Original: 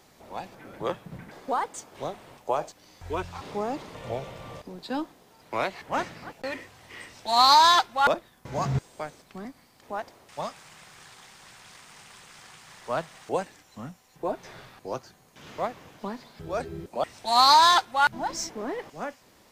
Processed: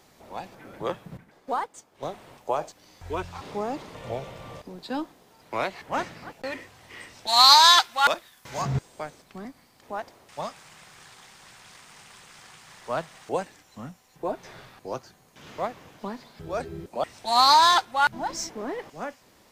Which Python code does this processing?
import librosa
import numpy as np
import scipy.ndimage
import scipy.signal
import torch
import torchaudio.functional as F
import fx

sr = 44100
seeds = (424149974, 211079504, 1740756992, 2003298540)

y = fx.upward_expand(x, sr, threshold_db=-47.0, expansion=1.5, at=(1.17, 2.03))
y = fx.tilt_shelf(y, sr, db=-8.0, hz=970.0, at=(7.27, 8.62))